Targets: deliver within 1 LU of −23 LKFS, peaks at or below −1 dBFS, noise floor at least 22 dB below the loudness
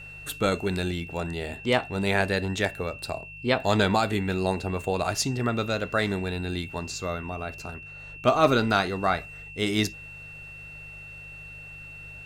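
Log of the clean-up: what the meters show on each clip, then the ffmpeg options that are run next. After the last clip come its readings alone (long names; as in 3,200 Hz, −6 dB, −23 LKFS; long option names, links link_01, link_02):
mains hum 50 Hz; hum harmonics up to 150 Hz; level of the hum −50 dBFS; interfering tone 2,700 Hz; level of the tone −41 dBFS; integrated loudness −26.5 LKFS; sample peak −9.0 dBFS; target loudness −23.0 LKFS
→ -af "bandreject=frequency=50:width_type=h:width=4,bandreject=frequency=100:width_type=h:width=4,bandreject=frequency=150:width_type=h:width=4"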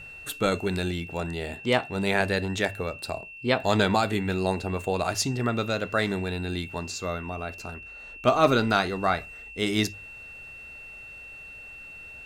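mains hum none found; interfering tone 2,700 Hz; level of the tone −41 dBFS
→ -af "bandreject=frequency=2700:width=30"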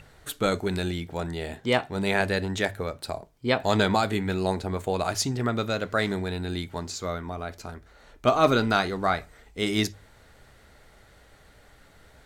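interfering tone none found; integrated loudness −27.0 LKFS; sample peak −8.5 dBFS; target loudness −23.0 LKFS
→ -af "volume=4dB"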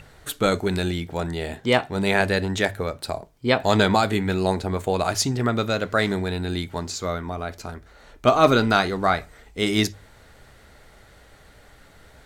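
integrated loudness −23.0 LKFS; sample peak −4.5 dBFS; background noise floor −52 dBFS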